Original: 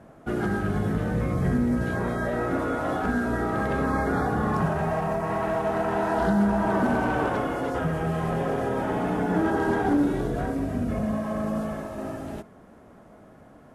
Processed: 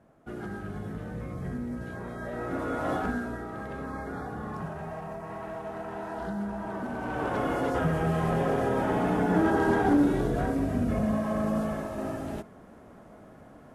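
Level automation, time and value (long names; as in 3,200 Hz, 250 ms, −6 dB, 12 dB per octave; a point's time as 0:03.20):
0:02.09 −11 dB
0:02.94 −1.5 dB
0:03.44 −11.5 dB
0:06.92 −11.5 dB
0:07.51 0 dB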